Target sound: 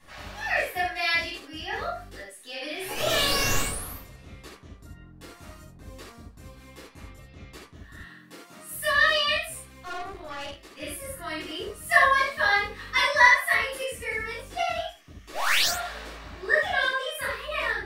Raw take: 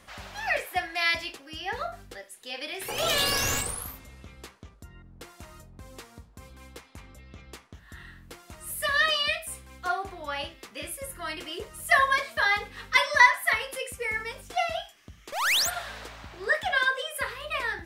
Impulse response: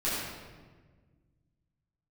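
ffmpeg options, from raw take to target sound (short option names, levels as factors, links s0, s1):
-filter_complex "[0:a]asettb=1/sr,asplit=3[s0][s1][s2];[s0]atrim=end=7.974[s3];[s1]atrim=start=7.97:end=8.73,asetpts=PTS-STARTPTS,afade=t=in:d=0.004:c=qsin,afade=t=out:st=0.756:d=0.004:c=qsin,highpass=f=160:w=0.5412,highpass=f=160:w=1.3066[s4];[s2]atrim=start=8.726[s5];[s3][s4]acrossfade=d=0.004:c1=hsin:c2=qsin[s6];[s6][s5]acrossfade=d=0.004:c1=qsin:c2=hsin[s7];[1:a]atrim=start_sample=2205,afade=t=out:st=0.15:d=0.01,atrim=end_sample=7056[s8];[s7][s8]afir=irnorm=-1:irlink=0,asettb=1/sr,asplit=3[s9][s10][s11];[s9]atrim=end=9.854[s12];[s10]atrim=start=9.85:end=10.82,asetpts=PTS-STARTPTS,afade=t=in:d=0.004:c=qsin,afade=t=out:st=0.966:d=0.004:c=qsin,aeval=exprs='(tanh(20*val(0)+0.65)-tanh(0.65))/20':c=same[s13];[s11]atrim=start=10.816[s14];[s12][s13]acrossfade=d=0.004:c1=hsin:c2=qsin[s15];[s15][s14]acrossfade=d=0.004:c1=qsin:c2=hsin,volume=0.531"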